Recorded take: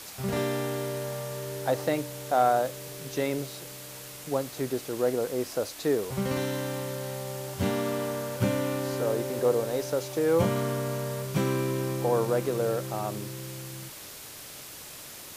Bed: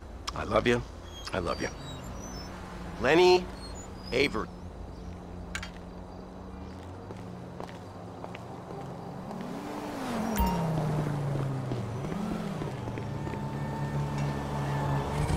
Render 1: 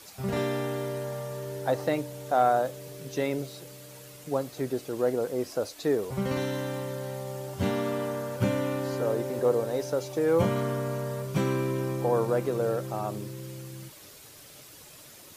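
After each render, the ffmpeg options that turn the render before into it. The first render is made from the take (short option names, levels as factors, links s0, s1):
-af "afftdn=nr=8:nf=-44"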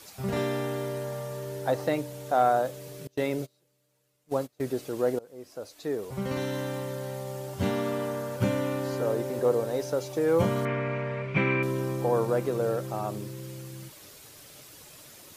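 -filter_complex "[0:a]asettb=1/sr,asplit=3[s0][s1][s2];[s0]atrim=end=3.074[s3];[s1]atrim=start=3.07:end=4.61,asetpts=PTS-STARTPTS,afade=t=in:d=0.004:c=qsin,afade=t=out:st=1.536:d=0.004:c=qsin,agate=range=0.0501:threshold=0.0158:ratio=16:release=100:detection=peak[s4];[s2]atrim=start=4.606[s5];[s3][s4]acrossfade=d=0.004:c1=hsin:c2=qsin[s6];[s6][s5]acrossfade=d=0.004:c1=qsin:c2=hsin,asettb=1/sr,asplit=3[s7][s8][s9];[s7]atrim=end=10.654[s10];[s8]atrim=start=10.65:end=11.63,asetpts=PTS-STARTPTS,afade=t=in:d=0.004:c=qsin,afade=t=out:st=0.976:d=0.004:c=qsin,lowpass=f=2300:t=q:w=6.8[s11];[s9]atrim=start=11.626[s12];[s10][s11]acrossfade=d=0.004:c1=hsin:c2=qsin[s13];[s13][s12]acrossfade=d=0.004:c1=qsin:c2=hsin,asplit=2[s14][s15];[s14]atrim=end=5.19,asetpts=PTS-STARTPTS,afade=t=out:st=5.186:d=0.004:c=hsin:silence=0.0707946[s16];[s15]atrim=start=5.19,asetpts=PTS-STARTPTS,afade=t=in:d=1.41:silence=0.0707946[s17];[s16][s17]concat=n=2:v=0:a=1"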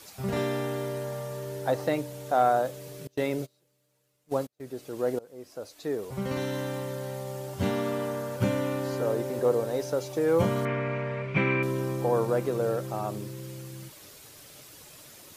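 -filter_complex "[0:a]asplit=2[s0][s1];[s0]atrim=end=4.47,asetpts=PTS-STARTPTS,afade=t=out:st=4.466:d=0.004:c=hsin:silence=0.11885[s2];[s1]atrim=start=4.47,asetpts=PTS-STARTPTS,afade=t=in:d=0.76:silence=0.11885[s3];[s2][s3]concat=n=2:v=0:a=1"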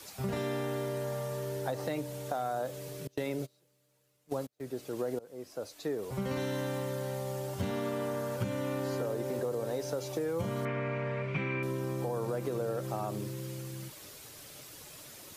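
-filter_complex "[0:a]acrossover=split=160|3400[s0][s1][s2];[s1]alimiter=limit=0.0794:level=0:latency=1[s3];[s0][s3][s2]amix=inputs=3:normalize=0,acompressor=threshold=0.0316:ratio=6"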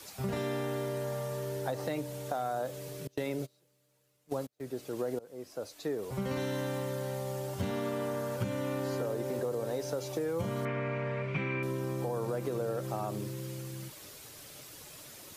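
-af anull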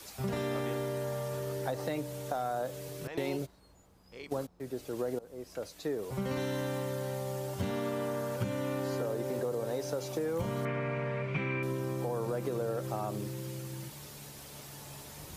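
-filter_complex "[1:a]volume=0.0891[s0];[0:a][s0]amix=inputs=2:normalize=0"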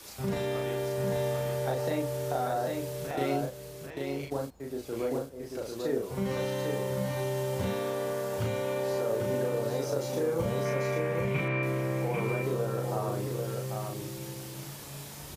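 -filter_complex "[0:a]asplit=2[s0][s1];[s1]adelay=36,volume=0.794[s2];[s0][s2]amix=inputs=2:normalize=0,aecho=1:1:794:0.631"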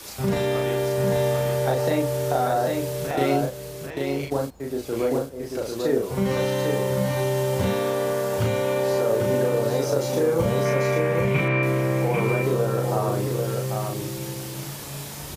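-af "volume=2.51"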